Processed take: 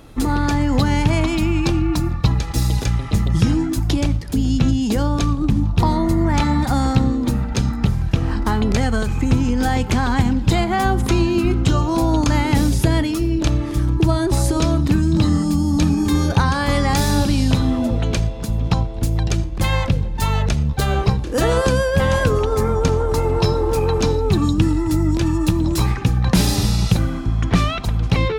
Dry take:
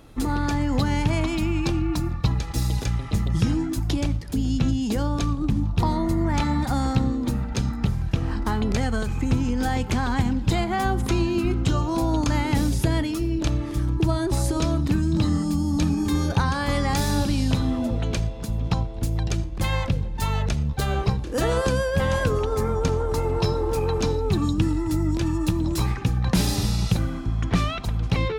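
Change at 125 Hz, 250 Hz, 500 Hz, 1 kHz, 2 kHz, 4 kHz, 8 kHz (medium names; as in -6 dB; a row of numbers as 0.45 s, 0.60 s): +5.5 dB, +5.5 dB, +5.5 dB, +5.5 dB, +5.5 dB, +5.5 dB, +5.5 dB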